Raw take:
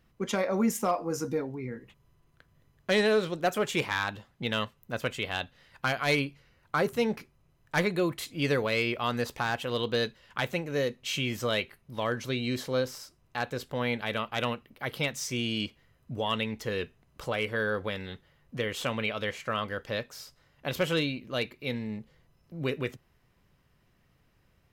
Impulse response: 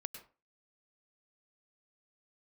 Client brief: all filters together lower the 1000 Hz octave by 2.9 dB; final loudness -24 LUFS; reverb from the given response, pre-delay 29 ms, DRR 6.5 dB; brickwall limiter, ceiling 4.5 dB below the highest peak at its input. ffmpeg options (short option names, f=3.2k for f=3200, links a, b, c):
-filter_complex "[0:a]equalizer=f=1k:t=o:g=-4,alimiter=limit=-21.5dB:level=0:latency=1,asplit=2[a][b];[1:a]atrim=start_sample=2205,adelay=29[c];[b][c]afir=irnorm=-1:irlink=0,volume=-4dB[d];[a][d]amix=inputs=2:normalize=0,volume=8.5dB"